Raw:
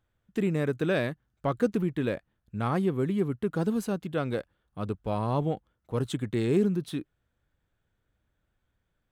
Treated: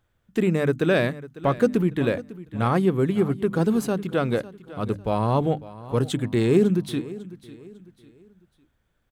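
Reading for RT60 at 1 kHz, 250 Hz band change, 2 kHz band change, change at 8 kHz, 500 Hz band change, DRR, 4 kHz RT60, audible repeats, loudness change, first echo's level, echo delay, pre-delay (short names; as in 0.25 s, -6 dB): none, +5.5 dB, +6.5 dB, +6.5 dB, +6.5 dB, none, none, 2, +6.0 dB, -17.5 dB, 0.55 s, none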